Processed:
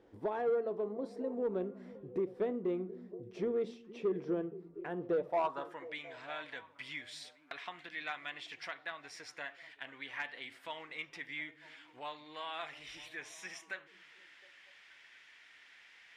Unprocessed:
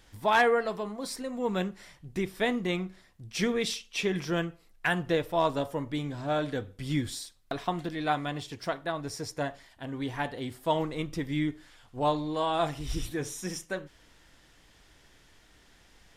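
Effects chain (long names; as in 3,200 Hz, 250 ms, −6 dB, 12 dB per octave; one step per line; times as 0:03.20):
downward compressor 2 to 1, threshold −41 dBFS, peak gain reduction 12 dB
band-pass filter sweep 400 Hz → 2,200 Hz, 0:05.07–0:05.88
soft clipping −37.5 dBFS, distortion −13 dB
harmonic generator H 3 −21 dB, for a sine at −37.5 dBFS
on a send: echo through a band-pass that steps 238 ms, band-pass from 170 Hz, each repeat 0.7 octaves, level −10 dB
on the sum: level +11 dB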